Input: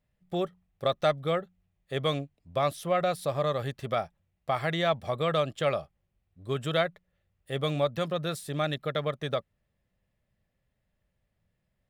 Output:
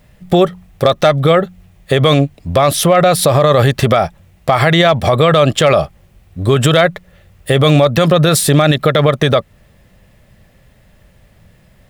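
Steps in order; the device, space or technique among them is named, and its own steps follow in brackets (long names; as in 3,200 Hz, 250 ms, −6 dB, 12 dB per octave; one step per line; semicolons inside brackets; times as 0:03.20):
loud club master (downward compressor 1.5 to 1, threshold −35 dBFS, peak gain reduction 6 dB; hard clipping −21.5 dBFS, distortion −31 dB; boost into a limiter +30.5 dB)
level −1 dB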